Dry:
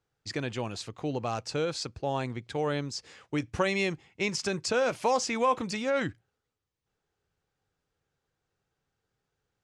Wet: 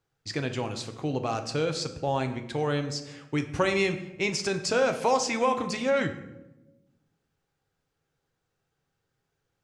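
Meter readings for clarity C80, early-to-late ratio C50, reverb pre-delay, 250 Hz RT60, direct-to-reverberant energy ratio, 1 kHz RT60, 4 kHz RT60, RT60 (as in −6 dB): 13.5 dB, 11.0 dB, 6 ms, 1.5 s, 6.5 dB, 0.85 s, 0.60 s, 1.0 s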